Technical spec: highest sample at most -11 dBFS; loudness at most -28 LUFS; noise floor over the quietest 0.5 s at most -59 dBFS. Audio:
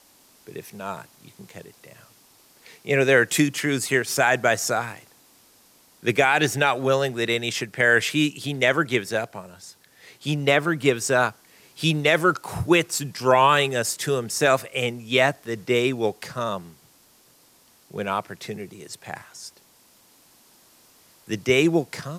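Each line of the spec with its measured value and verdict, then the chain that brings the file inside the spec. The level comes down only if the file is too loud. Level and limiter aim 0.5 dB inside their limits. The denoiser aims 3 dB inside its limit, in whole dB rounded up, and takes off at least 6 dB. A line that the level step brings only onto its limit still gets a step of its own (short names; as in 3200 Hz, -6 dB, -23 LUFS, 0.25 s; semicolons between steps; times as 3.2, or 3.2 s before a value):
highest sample -6.0 dBFS: fail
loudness -22.0 LUFS: fail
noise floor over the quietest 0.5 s -57 dBFS: fail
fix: gain -6.5 dB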